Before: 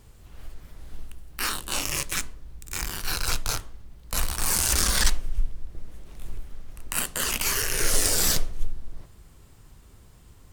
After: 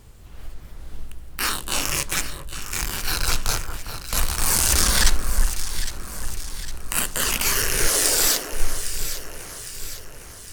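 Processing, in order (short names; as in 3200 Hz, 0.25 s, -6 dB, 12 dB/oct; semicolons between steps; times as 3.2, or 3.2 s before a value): 7.88–8.53 HPF 280 Hz 24 dB/oct; on a send: echo with dull and thin repeats by turns 0.404 s, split 1600 Hz, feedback 72%, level -8 dB; on the sum: gain +4 dB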